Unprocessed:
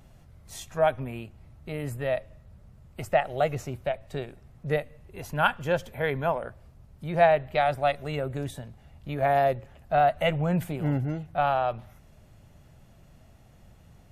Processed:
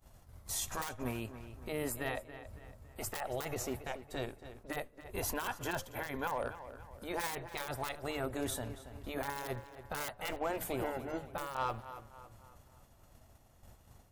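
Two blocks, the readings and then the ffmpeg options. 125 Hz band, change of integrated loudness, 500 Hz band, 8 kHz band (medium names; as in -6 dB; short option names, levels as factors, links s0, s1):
-14.0 dB, -12.0 dB, -14.0 dB, no reading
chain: -filter_complex "[0:a]asplit=2[s0][s1];[s1]aeval=exprs='(mod(6.31*val(0)+1,2)-1)/6.31':c=same,volume=0.335[s2];[s0][s2]amix=inputs=2:normalize=0,acompressor=threshold=0.01:ratio=2,afftfilt=real='re*lt(hypot(re,im),0.112)':imag='im*lt(hypot(re,im),0.112)':win_size=1024:overlap=0.75,highshelf=f=6200:g=10,alimiter=level_in=2.82:limit=0.0631:level=0:latency=1:release=22,volume=0.355,agate=range=0.0224:threshold=0.0112:ratio=3:detection=peak,equalizer=f=160:t=o:w=0.67:g=-8,equalizer=f=1000:t=o:w=0.67:g=5,equalizer=f=2500:t=o:w=0.67:g=-3,asoftclip=type=hard:threshold=0.0158,asplit=2[s3][s4];[s4]adelay=279,lowpass=f=4300:p=1,volume=0.237,asplit=2[s5][s6];[s6]adelay=279,lowpass=f=4300:p=1,volume=0.46,asplit=2[s7][s8];[s8]adelay=279,lowpass=f=4300:p=1,volume=0.46,asplit=2[s9][s10];[s10]adelay=279,lowpass=f=4300:p=1,volume=0.46,asplit=2[s11][s12];[s12]adelay=279,lowpass=f=4300:p=1,volume=0.46[s13];[s5][s7][s9][s11][s13]amix=inputs=5:normalize=0[s14];[s3][s14]amix=inputs=2:normalize=0,volume=2.51"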